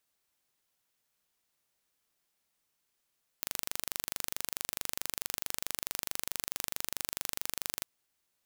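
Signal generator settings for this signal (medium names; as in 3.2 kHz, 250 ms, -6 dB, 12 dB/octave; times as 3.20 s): pulse train 24.6 per s, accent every 0, -6 dBFS 4.41 s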